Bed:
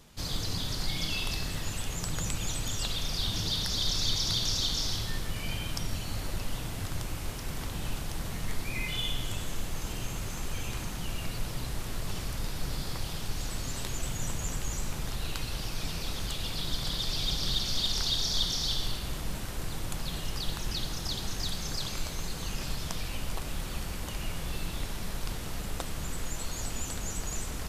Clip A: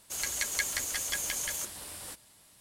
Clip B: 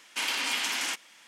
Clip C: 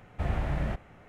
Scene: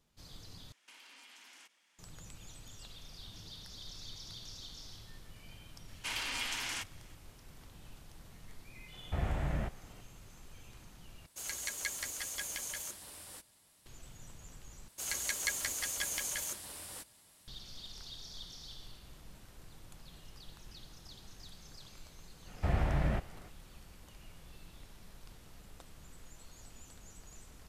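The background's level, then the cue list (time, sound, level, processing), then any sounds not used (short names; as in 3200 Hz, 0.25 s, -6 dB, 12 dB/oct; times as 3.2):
bed -19 dB
0.72 replace with B -17 dB + compressor 10:1, threshold -36 dBFS
5.88 add B -8 dB
8.93 add C -4.5 dB
11.26 replace with A -7 dB
14.88 replace with A -3.5 dB
22.44 add C -1 dB, fades 0.05 s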